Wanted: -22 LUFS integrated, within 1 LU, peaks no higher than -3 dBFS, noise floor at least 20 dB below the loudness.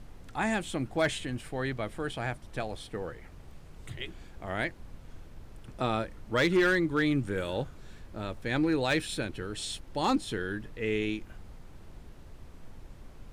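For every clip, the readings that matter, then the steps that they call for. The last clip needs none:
clipped samples 0.2%; clipping level -19.0 dBFS; noise floor -50 dBFS; noise floor target -52 dBFS; loudness -31.5 LUFS; peak level -19.0 dBFS; loudness target -22.0 LUFS
-> clip repair -19 dBFS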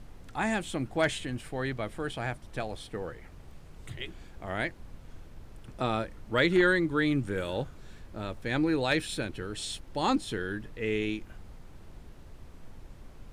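clipped samples 0.0%; noise floor -50 dBFS; noise floor target -51 dBFS
-> noise print and reduce 6 dB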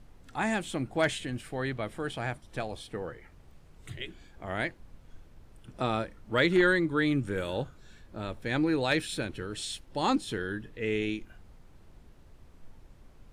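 noise floor -56 dBFS; loudness -31.0 LUFS; peak level -10.5 dBFS; loudness target -22.0 LUFS
-> trim +9 dB; peak limiter -3 dBFS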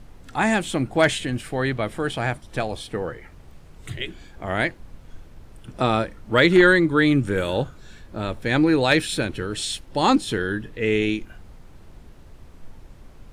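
loudness -22.0 LUFS; peak level -3.0 dBFS; noise floor -47 dBFS

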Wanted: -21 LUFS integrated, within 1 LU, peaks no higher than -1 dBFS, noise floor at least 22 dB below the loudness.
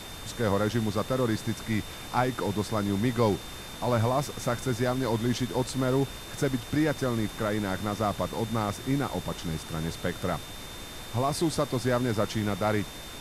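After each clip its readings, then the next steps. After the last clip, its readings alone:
steady tone 3.6 kHz; tone level -46 dBFS; noise floor -41 dBFS; noise floor target -51 dBFS; loudness -29.0 LUFS; peak level -12.0 dBFS; loudness target -21.0 LUFS
-> band-stop 3.6 kHz, Q 30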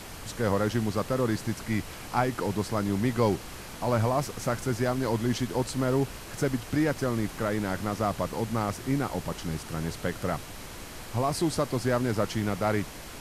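steady tone not found; noise floor -42 dBFS; noise floor target -51 dBFS
-> noise print and reduce 9 dB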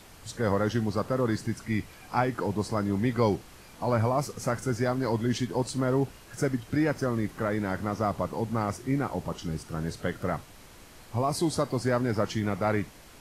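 noise floor -51 dBFS; noise floor target -52 dBFS
-> noise print and reduce 6 dB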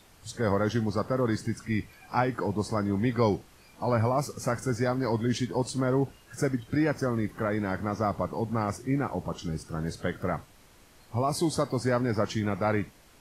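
noise floor -57 dBFS; loudness -29.5 LUFS; peak level -12.0 dBFS; loudness target -21.0 LUFS
-> trim +8.5 dB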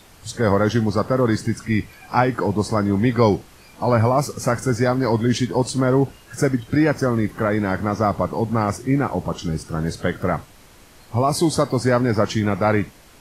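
loudness -21.0 LUFS; peak level -3.5 dBFS; noise floor -48 dBFS

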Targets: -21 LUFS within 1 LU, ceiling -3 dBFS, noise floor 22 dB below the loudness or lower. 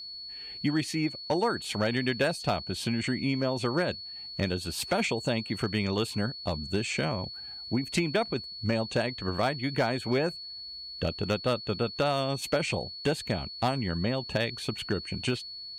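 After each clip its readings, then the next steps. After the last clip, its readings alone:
clipped samples 0.2%; clipping level -18.5 dBFS; steady tone 4.4 kHz; tone level -39 dBFS; loudness -30.0 LUFS; peak level -18.5 dBFS; loudness target -21.0 LUFS
-> clip repair -18.5 dBFS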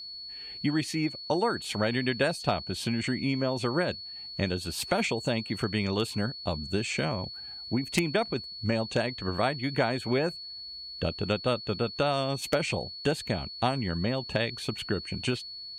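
clipped samples 0.0%; steady tone 4.4 kHz; tone level -39 dBFS
-> band-stop 4.4 kHz, Q 30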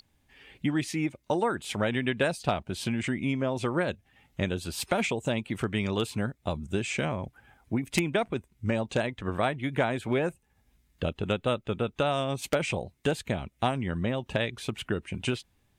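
steady tone not found; loudness -30.0 LUFS; peak level -9.0 dBFS; loudness target -21.0 LUFS
-> trim +9 dB; peak limiter -3 dBFS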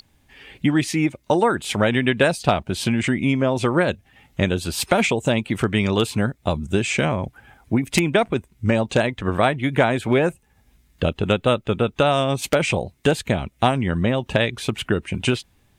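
loudness -21.5 LUFS; peak level -3.0 dBFS; noise floor -61 dBFS

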